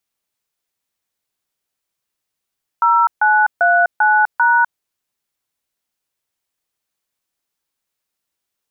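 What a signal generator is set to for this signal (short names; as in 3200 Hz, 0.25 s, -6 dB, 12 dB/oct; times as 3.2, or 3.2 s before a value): DTMF "0939#", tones 0.251 s, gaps 0.143 s, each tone -12.5 dBFS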